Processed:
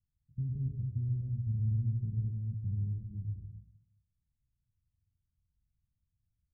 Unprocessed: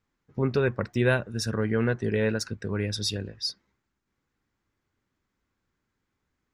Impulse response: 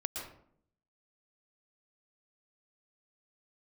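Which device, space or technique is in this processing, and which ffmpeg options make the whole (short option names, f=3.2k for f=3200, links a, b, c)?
club heard from the street: -filter_complex "[0:a]alimiter=limit=-19dB:level=0:latency=1:release=201,lowpass=f=140:w=0.5412,lowpass=f=140:w=1.3066[a];[1:a]atrim=start_sample=2205[b];[a][b]afir=irnorm=-1:irlink=0"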